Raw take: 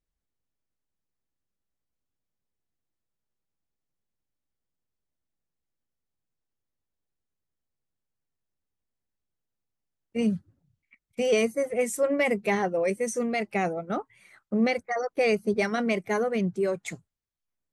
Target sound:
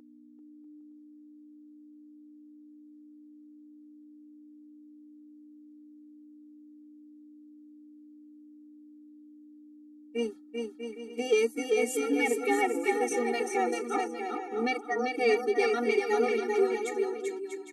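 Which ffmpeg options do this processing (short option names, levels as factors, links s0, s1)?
-filter_complex "[0:a]acontrast=83,aeval=exprs='val(0)+0.0224*(sin(2*PI*60*n/s)+sin(2*PI*2*60*n/s)/2+sin(2*PI*3*60*n/s)/3+sin(2*PI*4*60*n/s)/4+sin(2*PI*5*60*n/s)/5)':c=same,asplit=2[s0][s1];[s1]aecho=0:1:390|643.5|808.3|915.4|985:0.631|0.398|0.251|0.158|0.1[s2];[s0][s2]amix=inputs=2:normalize=0,afftfilt=real='re*eq(mod(floor(b*sr/1024/240),2),1)':imag='im*eq(mod(floor(b*sr/1024/240),2),1)':win_size=1024:overlap=0.75,volume=0.473"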